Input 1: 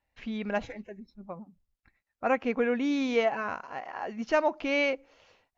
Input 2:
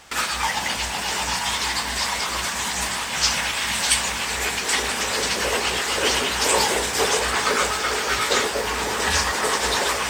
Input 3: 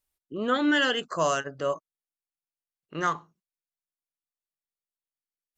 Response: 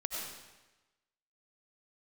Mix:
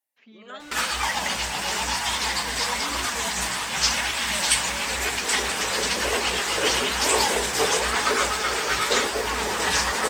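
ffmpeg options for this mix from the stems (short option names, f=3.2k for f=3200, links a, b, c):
-filter_complex "[0:a]highpass=310,alimiter=limit=-20dB:level=0:latency=1,volume=-7dB[a];[1:a]adelay=600,volume=2.5dB[b];[2:a]highpass=f=900:p=1,highshelf=f=6.2k:g=10,volume=-7dB[c];[a][b][c]amix=inputs=3:normalize=0,flanger=delay=2.5:depth=4.4:regen=-44:speed=0.98:shape=triangular"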